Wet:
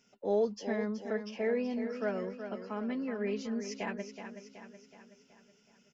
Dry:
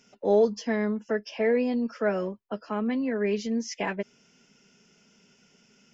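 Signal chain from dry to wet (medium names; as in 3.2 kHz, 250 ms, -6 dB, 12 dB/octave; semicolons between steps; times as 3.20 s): feedback delay 374 ms, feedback 52%, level -9 dB; trim -8 dB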